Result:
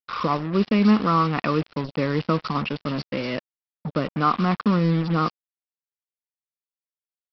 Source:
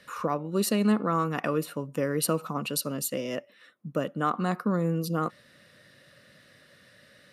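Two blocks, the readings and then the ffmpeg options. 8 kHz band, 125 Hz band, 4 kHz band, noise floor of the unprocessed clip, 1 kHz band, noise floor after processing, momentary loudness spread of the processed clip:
below −20 dB, +7.5 dB, +4.0 dB, −58 dBFS, +7.0 dB, below −85 dBFS, 10 LU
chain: -filter_complex "[0:a]aecho=1:1:0.9:0.38,acontrast=35,aexciter=amount=1.3:drive=3:freq=2200,acrossover=split=4000[link_01][link_02];[link_02]adelay=220[link_03];[link_01][link_03]amix=inputs=2:normalize=0,aresample=11025,acrusher=bits=4:mix=0:aa=0.5,aresample=44100"

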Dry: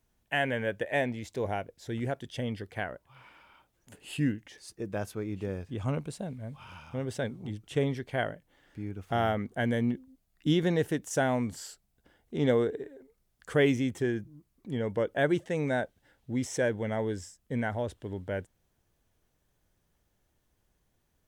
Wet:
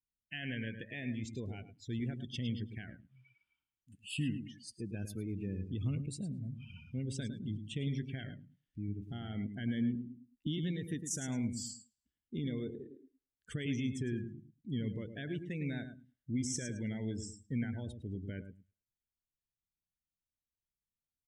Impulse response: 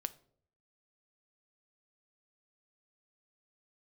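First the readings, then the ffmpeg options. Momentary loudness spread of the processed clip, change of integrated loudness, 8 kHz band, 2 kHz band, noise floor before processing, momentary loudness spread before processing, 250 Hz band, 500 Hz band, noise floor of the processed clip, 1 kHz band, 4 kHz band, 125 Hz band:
12 LU, −8.0 dB, 0.0 dB, −12.5 dB, −75 dBFS, 14 LU, −5.5 dB, −17.0 dB, below −85 dBFS, −23.5 dB, −5.5 dB, −4.0 dB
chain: -af "highshelf=frequency=2200:gain=4.5,alimiter=limit=-24dB:level=0:latency=1:release=113,firequalizer=gain_entry='entry(240,0);entry(550,-17);entry(2500,-1)':delay=0.05:min_phase=1,aecho=1:1:107|214|321|428:0.422|0.156|0.0577|0.0214,afftdn=noise_reduction=26:noise_floor=-46,volume=-1.5dB"

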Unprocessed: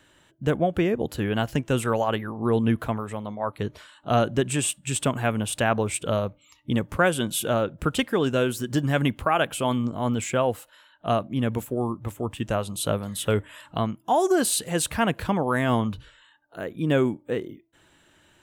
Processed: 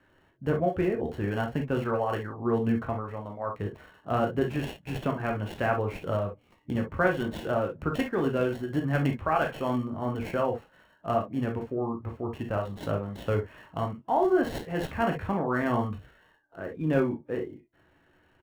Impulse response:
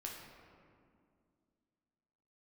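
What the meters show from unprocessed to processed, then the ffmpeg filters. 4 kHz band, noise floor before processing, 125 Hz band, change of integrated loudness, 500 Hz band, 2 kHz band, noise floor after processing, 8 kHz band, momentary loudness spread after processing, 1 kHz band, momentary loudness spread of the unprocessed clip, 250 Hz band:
−12.5 dB, −60 dBFS, −4.0 dB, −4.0 dB, −3.5 dB, −4.5 dB, −65 dBFS, below −20 dB, 9 LU, −3.5 dB, 9 LU, −4.0 dB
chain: -filter_complex "[1:a]atrim=start_sample=2205,atrim=end_sample=3087[link_01];[0:a][link_01]afir=irnorm=-1:irlink=0,aresample=16000,aresample=44100,acrossover=split=610|2600[link_02][link_03][link_04];[link_04]acrusher=samples=36:mix=1:aa=0.000001[link_05];[link_02][link_03][link_05]amix=inputs=3:normalize=0"

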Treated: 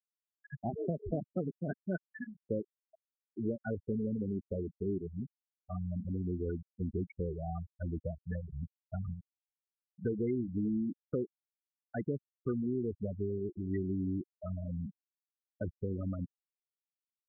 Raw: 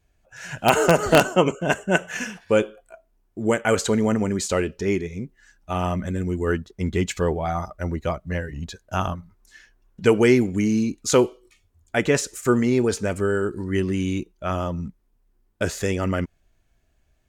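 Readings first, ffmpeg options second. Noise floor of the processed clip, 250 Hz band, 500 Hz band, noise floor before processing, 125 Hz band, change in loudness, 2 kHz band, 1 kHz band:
below −85 dBFS, −12.5 dB, −17.0 dB, −66 dBFS, −10.5 dB, −15.0 dB, −26.0 dB, −24.0 dB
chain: -filter_complex "[0:a]acrossover=split=310|3000[link_01][link_02][link_03];[link_01]acompressor=threshold=-27dB:ratio=4[link_04];[link_02]acompressor=threshold=-33dB:ratio=4[link_05];[link_03]acompressor=threshold=-44dB:ratio=4[link_06];[link_04][link_05][link_06]amix=inputs=3:normalize=0,afftfilt=real='re*gte(hypot(re,im),0.126)':imag='im*gte(hypot(re,im),0.126)':win_size=1024:overlap=0.75,volume=-6.5dB"

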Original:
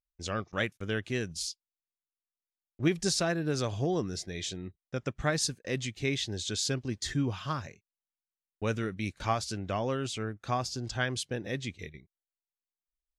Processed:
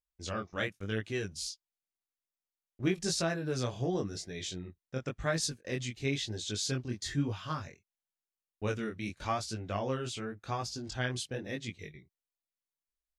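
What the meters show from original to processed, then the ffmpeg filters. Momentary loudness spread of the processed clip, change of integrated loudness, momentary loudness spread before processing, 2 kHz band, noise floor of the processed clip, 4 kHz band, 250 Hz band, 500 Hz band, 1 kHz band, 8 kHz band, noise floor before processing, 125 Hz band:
8 LU, −3.0 dB, 8 LU, −3.0 dB, below −85 dBFS, −3.0 dB, −3.0 dB, −2.5 dB, −3.5 dB, −3.0 dB, below −85 dBFS, −2.5 dB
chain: -af "flanger=delay=18:depth=6.6:speed=0.94"

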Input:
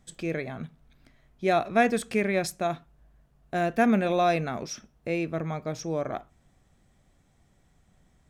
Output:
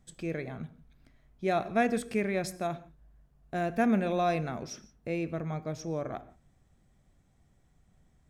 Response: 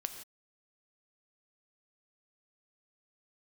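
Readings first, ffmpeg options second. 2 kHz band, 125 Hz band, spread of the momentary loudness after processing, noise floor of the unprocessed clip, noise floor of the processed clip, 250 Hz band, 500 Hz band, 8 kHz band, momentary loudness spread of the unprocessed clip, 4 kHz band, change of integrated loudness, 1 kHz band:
−6.0 dB, −2.5 dB, 15 LU, −65 dBFS, −67 dBFS, −3.0 dB, −4.5 dB, −5.5 dB, 15 LU, −6.5 dB, −4.5 dB, −5.0 dB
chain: -filter_complex "[0:a]asplit=2[link_01][link_02];[link_02]equalizer=frequency=3400:width=1.5:gain=-4.5[link_03];[1:a]atrim=start_sample=2205,lowshelf=frequency=350:gain=9.5[link_04];[link_03][link_04]afir=irnorm=-1:irlink=0,volume=-5dB[link_05];[link_01][link_05]amix=inputs=2:normalize=0,volume=-9dB"

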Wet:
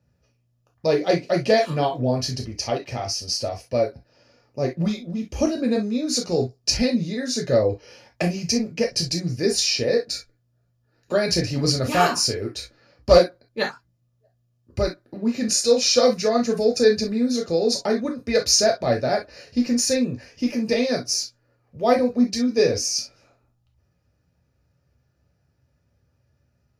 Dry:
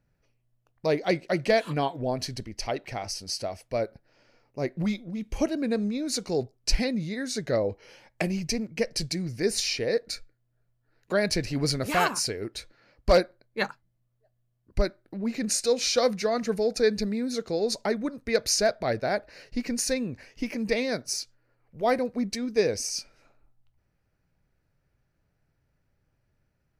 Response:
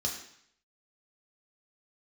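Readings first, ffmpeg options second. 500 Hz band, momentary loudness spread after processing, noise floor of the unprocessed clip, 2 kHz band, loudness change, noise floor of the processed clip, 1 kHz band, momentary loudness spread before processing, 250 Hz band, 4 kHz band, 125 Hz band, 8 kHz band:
+6.0 dB, 10 LU, −74 dBFS, +2.0 dB, +6.0 dB, −68 dBFS, +5.0 dB, 10 LU, +6.5 dB, +7.0 dB, +6.5 dB, +6.5 dB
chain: -filter_complex "[1:a]atrim=start_sample=2205,atrim=end_sample=3087[link_01];[0:a][link_01]afir=irnorm=-1:irlink=0"

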